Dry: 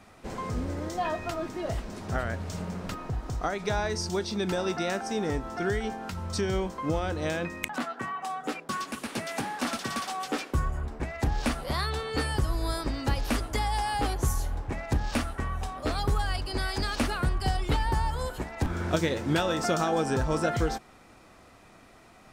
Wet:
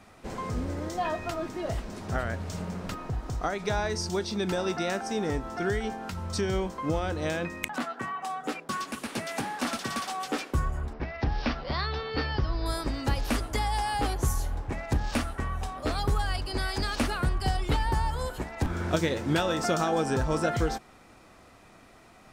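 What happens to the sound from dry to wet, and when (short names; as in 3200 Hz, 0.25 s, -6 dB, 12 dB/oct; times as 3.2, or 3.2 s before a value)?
10.93–12.66 elliptic low-pass 5400 Hz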